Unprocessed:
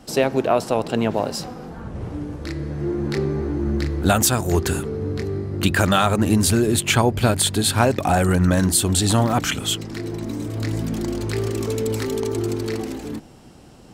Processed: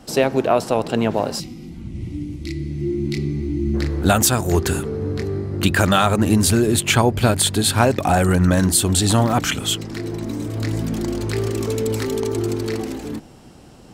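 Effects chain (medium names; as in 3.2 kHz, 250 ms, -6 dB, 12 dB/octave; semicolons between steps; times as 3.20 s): time-frequency box 1.40–3.74 s, 370–1900 Hz -19 dB; trim +1.5 dB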